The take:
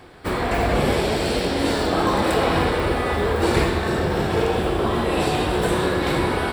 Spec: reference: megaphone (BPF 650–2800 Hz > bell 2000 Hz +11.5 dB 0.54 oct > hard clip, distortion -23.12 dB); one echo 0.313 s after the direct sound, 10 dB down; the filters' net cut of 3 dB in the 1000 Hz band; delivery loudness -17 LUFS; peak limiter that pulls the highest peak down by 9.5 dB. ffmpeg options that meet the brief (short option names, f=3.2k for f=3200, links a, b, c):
-af "equalizer=f=1k:t=o:g=-3.5,alimiter=limit=-15dB:level=0:latency=1,highpass=650,lowpass=2.8k,equalizer=f=2k:t=o:w=0.54:g=11.5,aecho=1:1:313:0.316,asoftclip=type=hard:threshold=-19dB,volume=8.5dB"